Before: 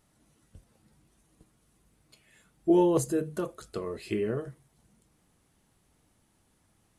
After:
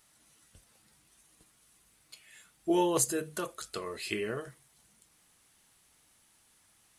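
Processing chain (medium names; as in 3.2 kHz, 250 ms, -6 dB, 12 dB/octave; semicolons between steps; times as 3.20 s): tilt shelf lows -8.5 dB, about 850 Hz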